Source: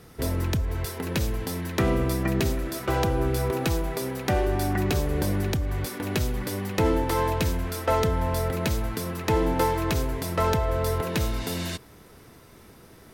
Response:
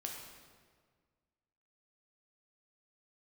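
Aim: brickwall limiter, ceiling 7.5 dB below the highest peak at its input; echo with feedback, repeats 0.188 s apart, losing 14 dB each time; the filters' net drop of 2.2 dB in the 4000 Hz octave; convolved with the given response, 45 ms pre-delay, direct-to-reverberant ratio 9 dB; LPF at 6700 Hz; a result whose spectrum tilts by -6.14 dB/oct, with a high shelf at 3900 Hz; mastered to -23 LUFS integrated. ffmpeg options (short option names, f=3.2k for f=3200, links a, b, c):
-filter_complex "[0:a]lowpass=6.7k,highshelf=f=3.9k:g=4.5,equalizer=f=4k:t=o:g=-5,alimiter=limit=-19dB:level=0:latency=1,aecho=1:1:188|376:0.2|0.0399,asplit=2[a][b];[1:a]atrim=start_sample=2205,adelay=45[c];[b][c]afir=irnorm=-1:irlink=0,volume=-8dB[d];[a][d]amix=inputs=2:normalize=0,volume=5.5dB"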